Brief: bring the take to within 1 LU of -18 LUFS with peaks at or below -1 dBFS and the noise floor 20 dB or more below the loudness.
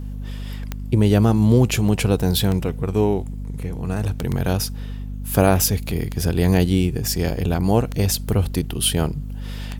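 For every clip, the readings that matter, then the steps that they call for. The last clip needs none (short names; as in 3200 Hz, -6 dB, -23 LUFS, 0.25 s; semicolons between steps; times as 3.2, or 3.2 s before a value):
clicks 6; hum 50 Hz; harmonics up to 250 Hz; hum level -27 dBFS; loudness -20.5 LUFS; peak -1.5 dBFS; loudness target -18.0 LUFS
-> de-click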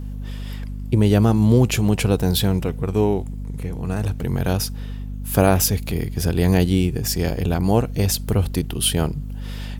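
clicks 0; hum 50 Hz; harmonics up to 250 Hz; hum level -27 dBFS
-> de-hum 50 Hz, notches 5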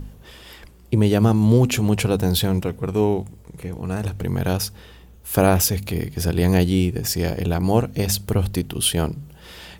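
hum none; loudness -21.0 LUFS; peak -2.5 dBFS; loudness target -18.0 LUFS
-> gain +3 dB; limiter -1 dBFS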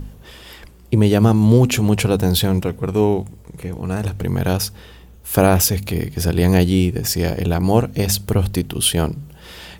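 loudness -18.0 LUFS; peak -1.0 dBFS; noise floor -43 dBFS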